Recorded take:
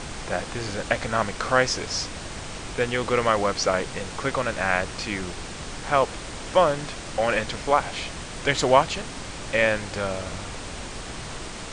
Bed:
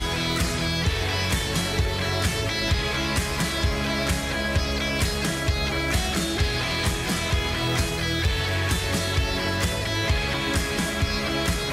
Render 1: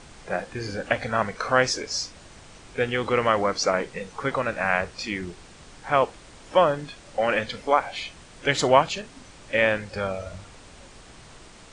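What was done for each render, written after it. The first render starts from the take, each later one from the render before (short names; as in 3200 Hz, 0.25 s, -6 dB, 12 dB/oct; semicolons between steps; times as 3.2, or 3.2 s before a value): noise print and reduce 12 dB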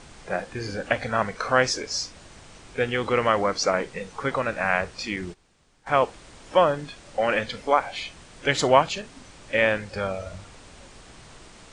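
5.16–6.03 gate -40 dBFS, range -16 dB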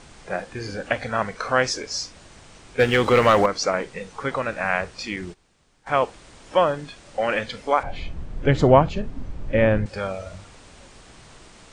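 2.79–3.46 sample leveller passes 2; 7.83–9.86 tilt -4.5 dB/oct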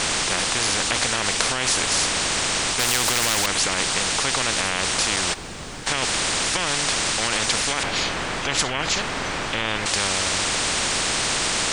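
maximiser +13.5 dB; spectral compressor 10:1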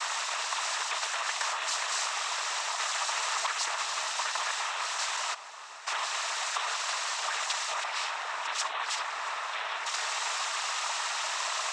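ladder high-pass 850 Hz, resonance 55%; noise vocoder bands 12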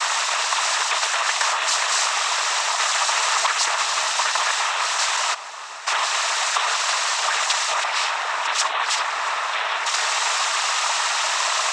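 gain +10.5 dB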